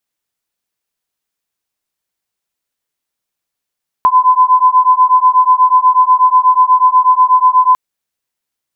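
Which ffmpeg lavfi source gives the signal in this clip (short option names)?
-f lavfi -i "aevalsrc='0.355*(sin(2*PI*1010*t)+sin(2*PI*1018.2*t))':d=3.7:s=44100"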